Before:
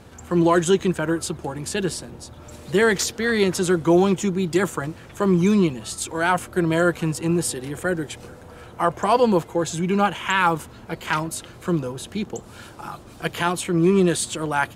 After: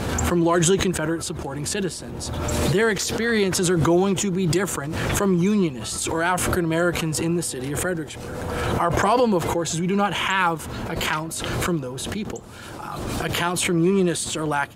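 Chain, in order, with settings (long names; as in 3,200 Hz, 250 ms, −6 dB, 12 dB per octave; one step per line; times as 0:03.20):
background raised ahead of every attack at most 23 dB per second
level −2.5 dB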